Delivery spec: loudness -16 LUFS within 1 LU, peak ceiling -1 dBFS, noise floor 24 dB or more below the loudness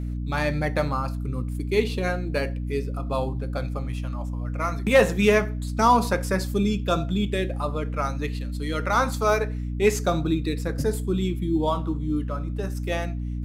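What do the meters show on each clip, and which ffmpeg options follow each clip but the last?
hum 60 Hz; harmonics up to 300 Hz; hum level -27 dBFS; loudness -25.0 LUFS; peak -7.0 dBFS; loudness target -16.0 LUFS
-> -af "bandreject=f=60:t=h:w=4,bandreject=f=120:t=h:w=4,bandreject=f=180:t=h:w=4,bandreject=f=240:t=h:w=4,bandreject=f=300:t=h:w=4"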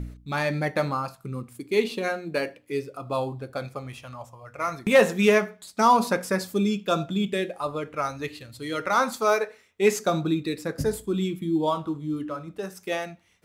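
hum none; loudness -26.0 LUFS; peak -8.0 dBFS; loudness target -16.0 LUFS
-> -af "volume=10dB,alimiter=limit=-1dB:level=0:latency=1"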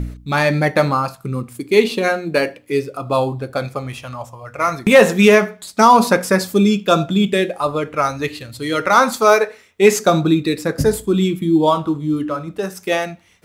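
loudness -16.5 LUFS; peak -1.0 dBFS; noise floor -48 dBFS

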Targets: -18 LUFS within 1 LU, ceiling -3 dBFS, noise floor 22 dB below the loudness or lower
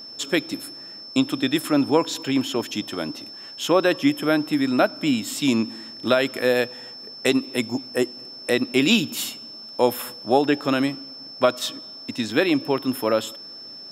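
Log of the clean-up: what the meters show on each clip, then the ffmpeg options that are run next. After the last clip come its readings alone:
steady tone 5300 Hz; tone level -37 dBFS; loudness -23.0 LUFS; peak -3.5 dBFS; loudness target -18.0 LUFS
-> -af "bandreject=f=5.3k:w=30"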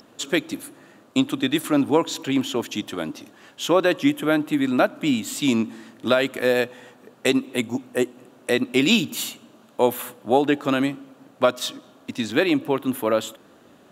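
steady tone none; loudness -23.0 LUFS; peak -3.5 dBFS; loudness target -18.0 LUFS
-> -af "volume=5dB,alimiter=limit=-3dB:level=0:latency=1"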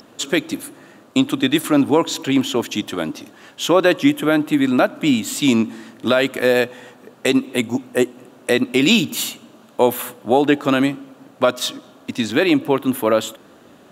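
loudness -18.5 LUFS; peak -3.0 dBFS; noise floor -48 dBFS

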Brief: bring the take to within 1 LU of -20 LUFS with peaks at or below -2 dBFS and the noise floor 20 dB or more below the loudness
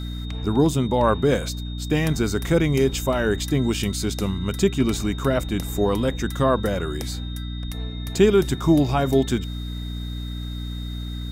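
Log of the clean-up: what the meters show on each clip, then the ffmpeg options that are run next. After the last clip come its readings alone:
hum 60 Hz; harmonics up to 300 Hz; hum level -28 dBFS; steady tone 3700 Hz; tone level -40 dBFS; loudness -23.0 LUFS; peak -4.5 dBFS; loudness target -20.0 LUFS
-> -af "bandreject=f=60:t=h:w=4,bandreject=f=120:t=h:w=4,bandreject=f=180:t=h:w=4,bandreject=f=240:t=h:w=4,bandreject=f=300:t=h:w=4"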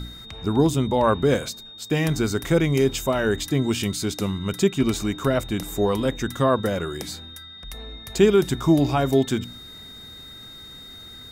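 hum none; steady tone 3700 Hz; tone level -40 dBFS
-> -af "bandreject=f=3.7k:w=30"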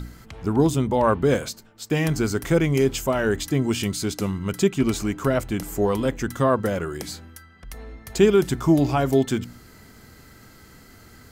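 steady tone none; loudness -22.5 LUFS; peak -5.0 dBFS; loudness target -20.0 LUFS
-> -af "volume=2.5dB"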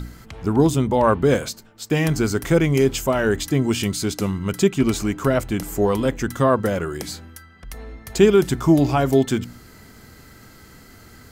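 loudness -20.0 LUFS; peak -2.5 dBFS; noise floor -47 dBFS

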